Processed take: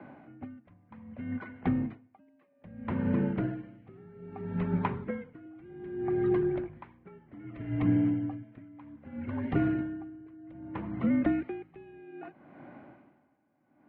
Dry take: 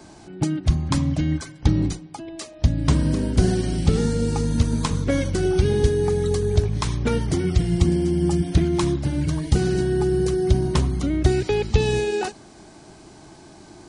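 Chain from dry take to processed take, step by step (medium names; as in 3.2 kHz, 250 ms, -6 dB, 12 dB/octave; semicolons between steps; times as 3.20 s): mistuned SSB -56 Hz 200–2400 Hz; logarithmic tremolo 0.63 Hz, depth 26 dB; trim -1.5 dB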